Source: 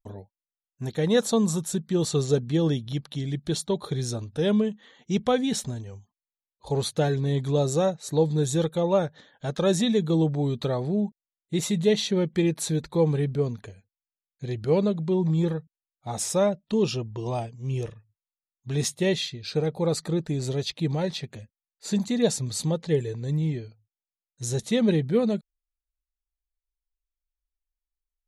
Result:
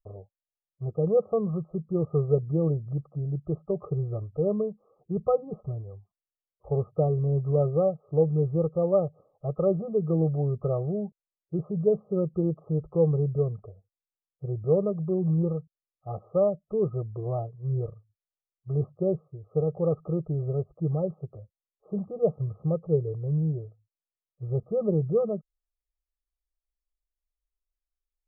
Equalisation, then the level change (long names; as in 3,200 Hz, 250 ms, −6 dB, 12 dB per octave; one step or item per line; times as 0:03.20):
linear-phase brick-wall low-pass 1,300 Hz
phaser with its sweep stopped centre 940 Hz, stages 6
dynamic equaliser 160 Hz, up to +5 dB, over −41 dBFS, Q 0.94
0.0 dB